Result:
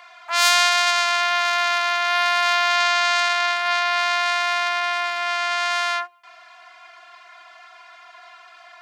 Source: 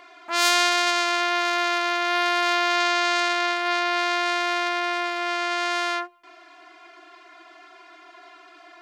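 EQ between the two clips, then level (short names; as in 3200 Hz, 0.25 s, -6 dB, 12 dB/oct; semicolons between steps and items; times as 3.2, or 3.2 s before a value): HPF 690 Hz 24 dB/oct; +3.5 dB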